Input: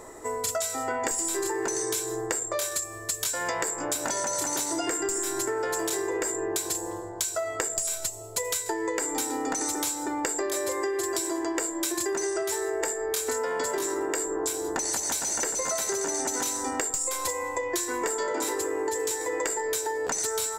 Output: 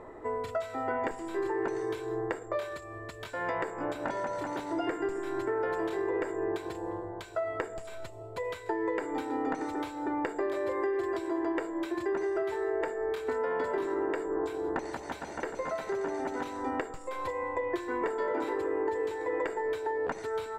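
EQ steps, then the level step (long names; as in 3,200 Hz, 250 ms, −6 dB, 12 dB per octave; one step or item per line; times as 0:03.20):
high-frequency loss of the air 500 metres
0.0 dB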